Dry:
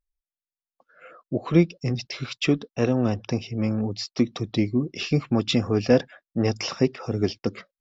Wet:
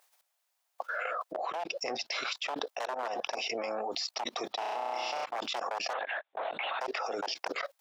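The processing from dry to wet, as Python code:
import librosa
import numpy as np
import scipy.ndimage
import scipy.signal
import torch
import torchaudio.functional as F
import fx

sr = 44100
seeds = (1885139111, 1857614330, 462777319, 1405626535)

y = fx.high_shelf(x, sr, hz=2500.0, db=-4.0, at=(1.35, 2.15))
y = fx.level_steps(y, sr, step_db=22)
y = 10.0 ** (-23.5 / 20.0) * (np.abs((y / 10.0 ** (-23.5 / 20.0) + 3.0) % 4.0 - 2.0) - 1.0)
y = fx.lpc_vocoder(y, sr, seeds[0], excitation='whisper', order=10, at=(5.93, 6.81))
y = fx.ladder_highpass(y, sr, hz=590.0, resonance_pct=45)
y = fx.room_flutter(y, sr, wall_m=5.7, rt60_s=1.3, at=(4.6, 5.24), fade=0.02)
y = fx.env_flatten(y, sr, amount_pct=100)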